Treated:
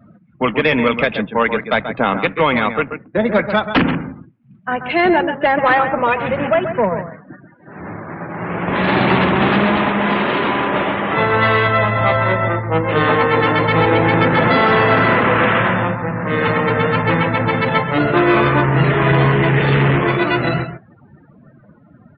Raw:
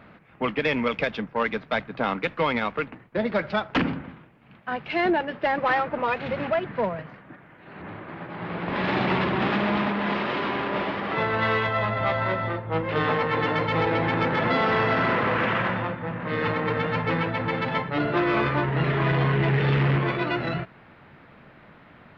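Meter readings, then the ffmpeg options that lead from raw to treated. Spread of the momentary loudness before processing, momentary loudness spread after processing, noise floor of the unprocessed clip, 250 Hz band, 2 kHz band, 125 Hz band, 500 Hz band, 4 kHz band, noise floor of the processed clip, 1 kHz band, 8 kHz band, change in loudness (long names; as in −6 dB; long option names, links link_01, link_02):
9 LU, 8 LU, −51 dBFS, +9.5 dB, +9.5 dB, +8.5 dB, +9.5 dB, +8.5 dB, −48 dBFS, +9.5 dB, can't be measured, +9.5 dB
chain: -filter_complex "[0:a]asplit=2[link_01][link_02];[link_02]adelay=134.1,volume=-9dB,highshelf=frequency=4000:gain=-3.02[link_03];[link_01][link_03]amix=inputs=2:normalize=0,afftdn=noise_reduction=30:noise_floor=-43,volume=9dB"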